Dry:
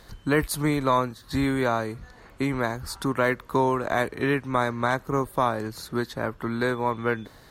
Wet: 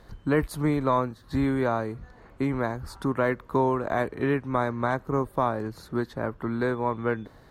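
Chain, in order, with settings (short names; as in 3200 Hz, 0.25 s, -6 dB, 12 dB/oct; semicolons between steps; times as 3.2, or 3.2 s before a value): high shelf 2100 Hz -12 dB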